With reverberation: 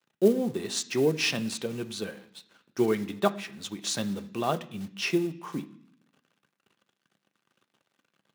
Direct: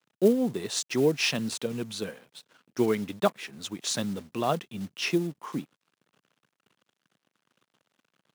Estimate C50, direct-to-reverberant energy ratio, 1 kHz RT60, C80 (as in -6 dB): 16.5 dB, 7.5 dB, 0.70 s, 19.5 dB